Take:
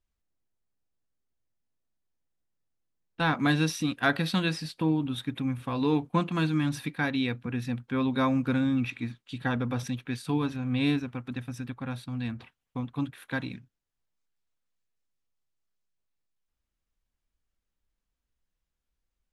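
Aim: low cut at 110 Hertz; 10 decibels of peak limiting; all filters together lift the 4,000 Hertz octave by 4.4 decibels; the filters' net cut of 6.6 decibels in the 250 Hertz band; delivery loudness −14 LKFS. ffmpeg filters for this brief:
ffmpeg -i in.wav -af "highpass=110,equalizer=frequency=250:width_type=o:gain=-8,equalizer=frequency=4000:width_type=o:gain=5,volume=20.5dB,alimiter=limit=-1dB:level=0:latency=1" out.wav

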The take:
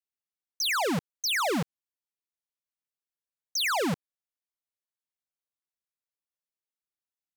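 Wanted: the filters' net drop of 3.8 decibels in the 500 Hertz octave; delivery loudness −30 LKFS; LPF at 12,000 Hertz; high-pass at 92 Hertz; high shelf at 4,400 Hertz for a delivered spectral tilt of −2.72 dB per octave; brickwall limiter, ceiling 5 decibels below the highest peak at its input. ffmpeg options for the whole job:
ffmpeg -i in.wav -af "highpass=92,lowpass=12000,equalizer=frequency=500:width_type=o:gain=-5,highshelf=frequency=4400:gain=4.5,volume=-1.5dB,alimiter=limit=-24dB:level=0:latency=1" out.wav

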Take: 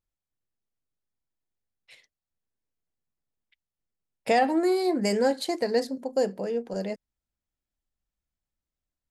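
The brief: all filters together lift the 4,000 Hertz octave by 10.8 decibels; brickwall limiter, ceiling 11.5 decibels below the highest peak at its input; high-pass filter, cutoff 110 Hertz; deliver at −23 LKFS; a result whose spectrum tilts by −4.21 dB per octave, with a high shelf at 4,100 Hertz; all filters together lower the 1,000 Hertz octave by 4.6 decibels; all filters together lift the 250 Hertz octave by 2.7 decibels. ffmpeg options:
ffmpeg -i in.wav -af "highpass=110,equalizer=frequency=250:width_type=o:gain=4.5,equalizer=frequency=1000:width_type=o:gain=-9,equalizer=frequency=4000:width_type=o:gain=9,highshelf=frequency=4100:gain=6.5,volume=6dB,alimiter=limit=-13.5dB:level=0:latency=1" out.wav

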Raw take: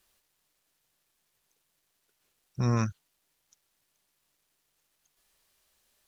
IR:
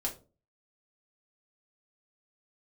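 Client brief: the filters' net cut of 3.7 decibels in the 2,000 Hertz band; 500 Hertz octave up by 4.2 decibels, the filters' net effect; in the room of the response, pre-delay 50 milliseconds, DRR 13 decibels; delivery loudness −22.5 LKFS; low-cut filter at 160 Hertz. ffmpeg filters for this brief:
-filter_complex "[0:a]highpass=160,equalizer=frequency=500:width_type=o:gain=5.5,equalizer=frequency=2000:width_type=o:gain=-5.5,asplit=2[link_01][link_02];[1:a]atrim=start_sample=2205,adelay=50[link_03];[link_02][link_03]afir=irnorm=-1:irlink=0,volume=-16dB[link_04];[link_01][link_04]amix=inputs=2:normalize=0,volume=9dB"

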